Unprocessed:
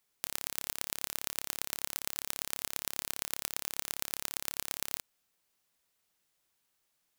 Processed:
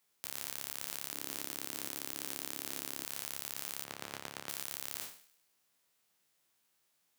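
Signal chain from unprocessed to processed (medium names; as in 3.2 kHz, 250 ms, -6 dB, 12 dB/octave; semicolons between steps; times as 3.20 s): spectral sustain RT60 0.42 s; high-pass 97 Hz 24 dB/octave; 1.12–3.05 s: peaking EQ 300 Hz +11 dB 0.98 oct; 3.84–4.49 s: low-pass 1.6 kHz 6 dB/octave; peak limiter -12.5 dBFS, peak gain reduction 9.5 dB; thinning echo 100 ms, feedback 48%, high-pass 870 Hz, level -17.5 dB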